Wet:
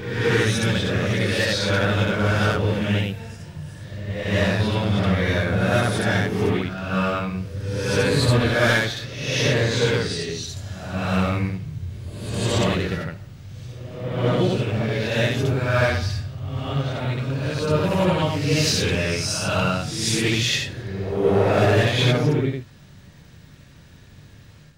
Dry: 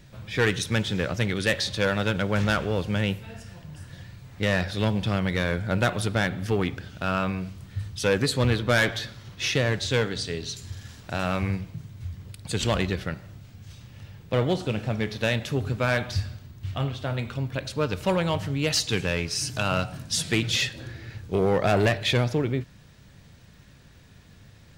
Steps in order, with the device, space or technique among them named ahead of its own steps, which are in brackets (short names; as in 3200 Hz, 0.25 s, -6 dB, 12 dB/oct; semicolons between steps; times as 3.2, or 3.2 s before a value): reverse reverb (reverse; reverb RT60 1.1 s, pre-delay 51 ms, DRR -6 dB; reverse); gain -3 dB